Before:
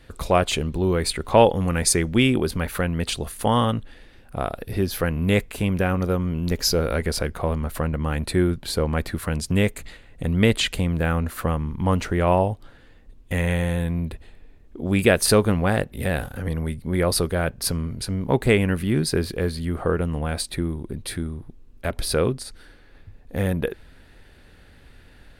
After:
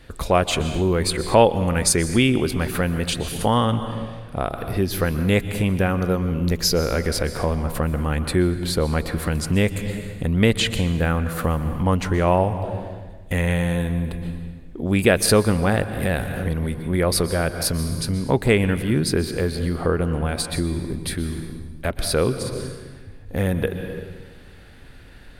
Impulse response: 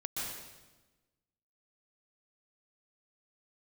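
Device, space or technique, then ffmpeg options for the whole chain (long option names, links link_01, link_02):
ducked reverb: -filter_complex "[0:a]asettb=1/sr,asplit=3[link_01][link_02][link_03];[link_01]atrim=end=3.384[link_04];[link_02]atrim=start=3.38:end=4.5,asetpts=PTS-STARTPTS,afade=type=in:duration=0.004:curve=qsin,afade=type=out:start_time=1.116:duration=0.004:curve=qsin,lowpass=11000[link_05];[link_03]atrim=start=4.496[link_06];[link_04][link_05]acrossfade=duration=0.004:curve1=hsin:curve2=qsin[link_07];[link_07][link_06]acrossfade=duration=0.004:curve1=qsin:curve2=hsin,asplit=3[link_08][link_09][link_10];[1:a]atrim=start_sample=2205[link_11];[link_09][link_11]afir=irnorm=-1:irlink=0[link_12];[link_10]apad=whole_len=1119901[link_13];[link_12][link_13]sidechaincompress=threshold=-26dB:ratio=10:attack=12:release=417,volume=-3.5dB[link_14];[link_08][link_14]amix=inputs=2:normalize=0"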